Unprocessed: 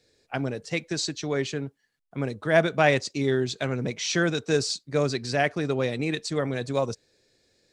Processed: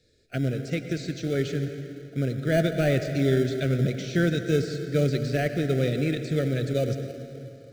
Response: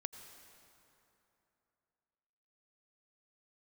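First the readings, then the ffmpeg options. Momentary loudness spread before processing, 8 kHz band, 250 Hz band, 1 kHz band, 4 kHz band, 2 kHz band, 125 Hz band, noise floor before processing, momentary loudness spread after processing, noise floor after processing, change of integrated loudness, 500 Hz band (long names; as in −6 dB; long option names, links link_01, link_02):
10 LU, −9.0 dB, +2.5 dB, −8.5 dB, −6.0 dB, −5.0 dB, +6.0 dB, −73 dBFS, 10 LU, −48 dBFS, 0.0 dB, −0.5 dB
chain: -filter_complex "[0:a]deesser=0.95,lowshelf=frequency=180:gain=10[link_01];[1:a]atrim=start_sample=2205,asetrate=43659,aresample=44100[link_02];[link_01][link_02]afir=irnorm=-1:irlink=0,asplit=2[link_03][link_04];[link_04]acrusher=samples=25:mix=1:aa=0.000001,volume=-11.5dB[link_05];[link_03][link_05]amix=inputs=2:normalize=0,asuperstop=centerf=960:order=8:qfactor=1.5,equalizer=frequency=3600:width_type=o:width=0.27:gain=3.5"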